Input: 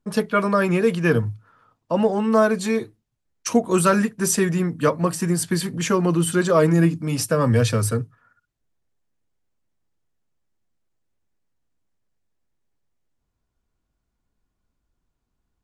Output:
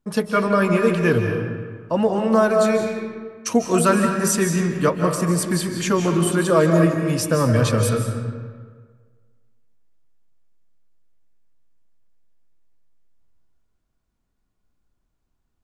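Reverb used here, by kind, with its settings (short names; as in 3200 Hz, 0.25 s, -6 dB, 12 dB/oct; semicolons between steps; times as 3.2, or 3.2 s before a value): digital reverb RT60 1.6 s, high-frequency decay 0.65×, pre-delay 0.115 s, DRR 4 dB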